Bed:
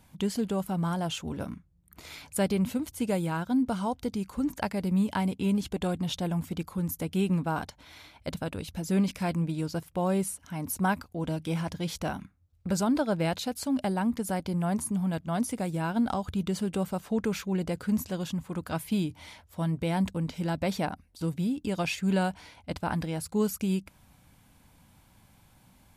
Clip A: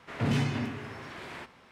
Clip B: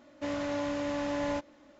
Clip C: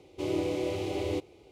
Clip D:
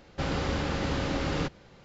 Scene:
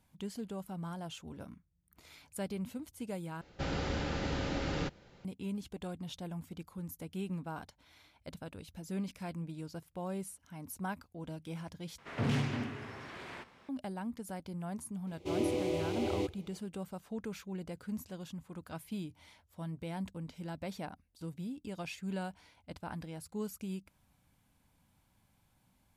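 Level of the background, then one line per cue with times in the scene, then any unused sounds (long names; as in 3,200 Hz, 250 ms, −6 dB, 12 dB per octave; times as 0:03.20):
bed −12 dB
0:03.41: overwrite with D −5.5 dB + notch filter 1,100 Hz, Q 9.9
0:11.98: overwrite with A −4 dB + highs frequency-modulated by the lows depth 0.28 ms
0:15.07: mix in C −2.5 dB
not used: B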